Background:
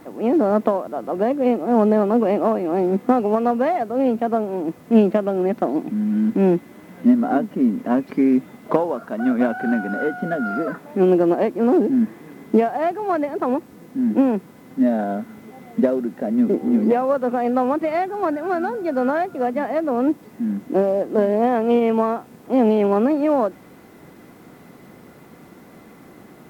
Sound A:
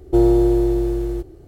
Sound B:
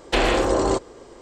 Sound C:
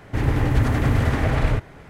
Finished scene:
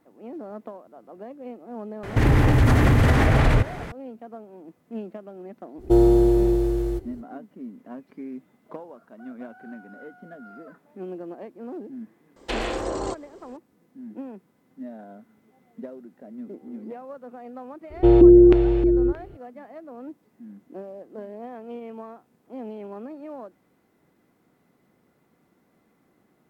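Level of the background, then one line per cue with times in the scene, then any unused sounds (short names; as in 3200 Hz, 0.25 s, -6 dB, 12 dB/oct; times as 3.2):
background -20 dB
2.03 add C -8.5 dB + maximiser +17.5 dB
5.77 add A -1.5 dB, fades 0.05 s
12.36 add B -8.5 dB
17.9 add A -0.5 dB + LFO low-pass square 1.6 Hz 330–2700 Hz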